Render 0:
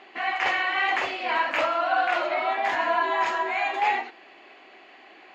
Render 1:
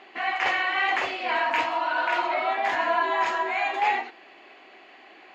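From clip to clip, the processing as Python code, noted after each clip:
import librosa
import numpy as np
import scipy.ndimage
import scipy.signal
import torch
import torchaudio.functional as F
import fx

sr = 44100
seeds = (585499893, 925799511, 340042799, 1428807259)

y = fx.spec_repair(x, sr, seeds[0], start_s=1.39, length_s=0.92, low_hz=520.0, high_hz=1400.0, source='before')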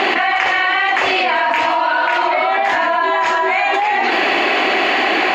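y = fx.env_flatten(x, sr, amount_pct=100)
y = y * librosa.db_to_amplitude(4.5)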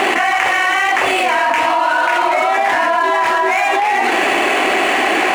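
y = scipy.signal.medfilt(x, 9)
y = y * librosa.db_to_amplitude(1.5)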